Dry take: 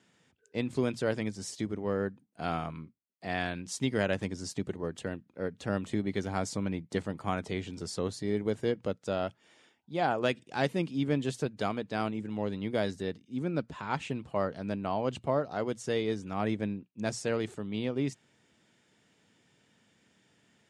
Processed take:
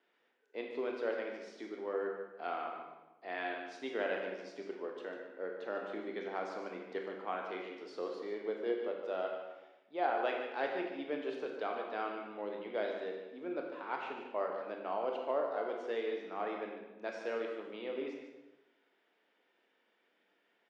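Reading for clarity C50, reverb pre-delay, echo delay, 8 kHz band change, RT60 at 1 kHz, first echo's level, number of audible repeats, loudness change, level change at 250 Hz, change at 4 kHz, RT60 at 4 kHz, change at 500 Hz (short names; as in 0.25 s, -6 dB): 3.0 dB, 22 ms, 0.148 s, under -20 dB, 1.0 s, -9.5 dB, 1, -6.0 dB, -12.0 dB, -9.5 dB, 0.85 s, -3.5 dB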